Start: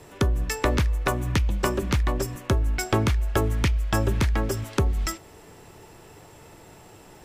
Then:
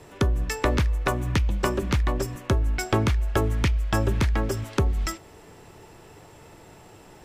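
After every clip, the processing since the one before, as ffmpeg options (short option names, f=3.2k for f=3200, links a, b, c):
-af "highshelf=f=7.8k:g=-5"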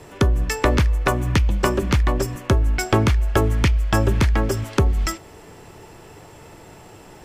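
-af "bandreject=f=3.8k:w=25,volume=5dB"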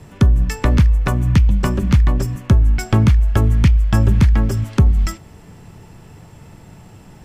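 -af "lowshelf=f=270:t=q:w=1.5:g=8.5,volume=-3dB"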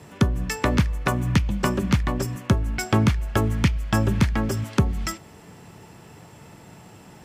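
-af "highpass=f=240:p=1"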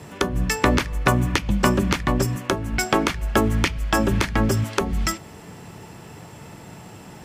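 -af "afftfilt=real='re*lt(hypot(re,im),0.708)':imag='im*lt(hypot(re,im),0.708)':win_size=1024:overlap=0.75,volume=5dB"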